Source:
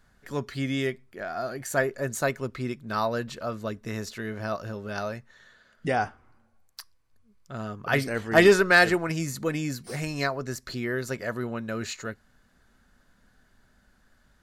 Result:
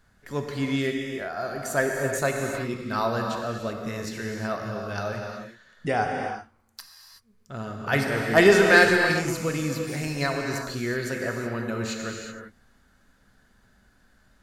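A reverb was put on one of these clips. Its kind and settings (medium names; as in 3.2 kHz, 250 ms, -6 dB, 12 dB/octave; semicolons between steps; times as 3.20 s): gated-style reverb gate 400 ms flat, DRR 1.5 dB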